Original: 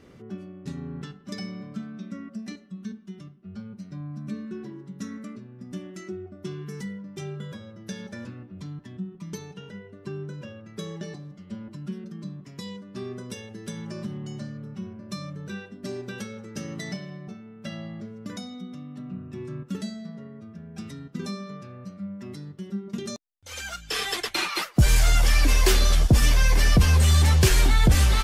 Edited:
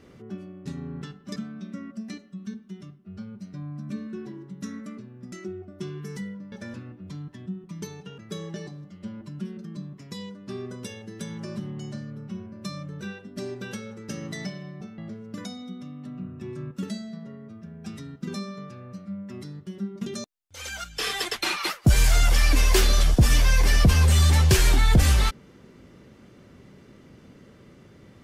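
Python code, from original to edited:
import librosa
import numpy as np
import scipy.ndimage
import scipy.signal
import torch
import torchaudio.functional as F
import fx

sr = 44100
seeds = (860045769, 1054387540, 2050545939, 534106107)

y = fx.edit(x, sr, fx.cut(start_s=1.36, length_s=0.38),
    fx.cut(start_s=5.7, length_s=0.26),
    fx.cut(start_s=7.16, length_s=0.87),
    fx.cut(start_s=9.69, length_s=0.96),
    fx.cut(start_s=17.45, length_s=0.45), tone=tone)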